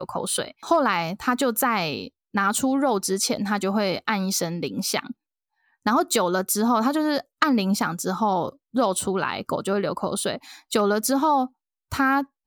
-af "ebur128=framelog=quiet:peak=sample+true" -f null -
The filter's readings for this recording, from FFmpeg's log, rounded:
Integrated loudness:
  I:         -23.6 LUFS
  Threshold: -33.8 LUFS
Loudness range:
  LRA:         2.1 LU
  Threshold: -44.0 LUFS
  LRA low:   -25.0 LUFS
  LRA high:  -22.9 LUFS
Sample peak:
  Peak:       -5.6 dBFS
True peak:
  Peak:       -5.5 dBFS